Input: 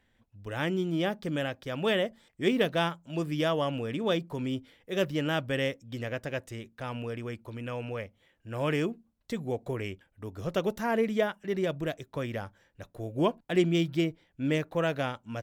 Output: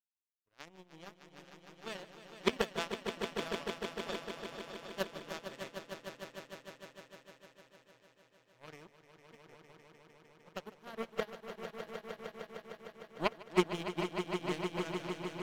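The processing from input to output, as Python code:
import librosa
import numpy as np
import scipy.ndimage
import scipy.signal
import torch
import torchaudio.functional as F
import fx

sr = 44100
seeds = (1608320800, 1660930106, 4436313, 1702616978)

y = fx.power_curve(x, sr, exponent=3.0)
y = fx.echo_swell(y, sr, ms=152, loudest=5, wet_db=-7.0)
y = fx.upward_expand(y, sr, threshold_db=-53.0, expansion=1.5)
y = y * 10.0 ** (4.5 / 20.0)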